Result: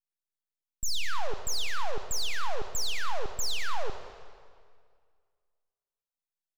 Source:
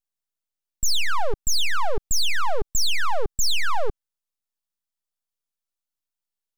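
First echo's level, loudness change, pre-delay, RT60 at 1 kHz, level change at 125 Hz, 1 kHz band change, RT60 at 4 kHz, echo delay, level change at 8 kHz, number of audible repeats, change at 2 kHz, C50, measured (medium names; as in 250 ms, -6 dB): -17.0 dB, -8.5 dB, 30 ms, 2.0 s, -7.0 dB, -8.0 dB, 1.7 s, 203 ms, -8.5 dB, 1, -8.5 dB, 8.0 dB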